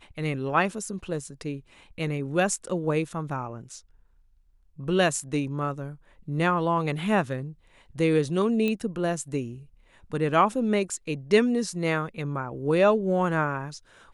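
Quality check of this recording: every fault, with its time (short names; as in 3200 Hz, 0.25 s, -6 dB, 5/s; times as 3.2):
8.68 pop -16 dBFS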